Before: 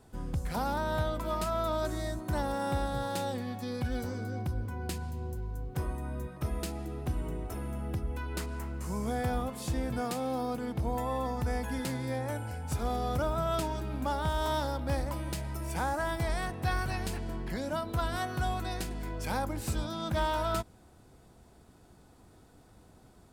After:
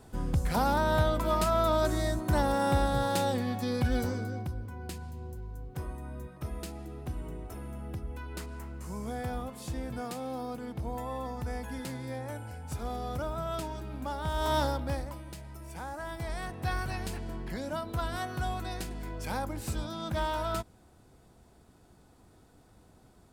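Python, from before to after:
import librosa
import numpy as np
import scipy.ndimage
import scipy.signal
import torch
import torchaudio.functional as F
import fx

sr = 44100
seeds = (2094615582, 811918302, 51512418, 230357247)

y = fx.gain(x, sr, db=fx.line((4.04, 5.0), (4.59, -4.0), (14.18, -4.0), (14.62, 4.5), (15.24, -8.5), (15.85, -8.5), (16.66, -1.5)))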